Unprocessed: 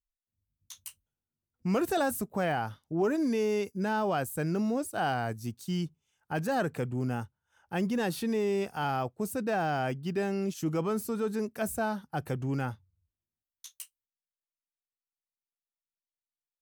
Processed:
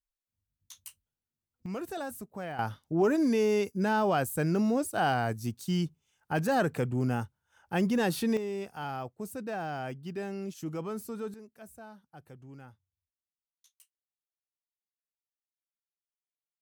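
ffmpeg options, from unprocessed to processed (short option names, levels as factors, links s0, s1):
-af "asetnsamples=n=441:p=0,asendcmd='1.66 volume volume -9dB;2.59 volume volume 2.5dB;8.37 volume volume -6dB;11.34 volume volume -17.5dB',volume=0.708"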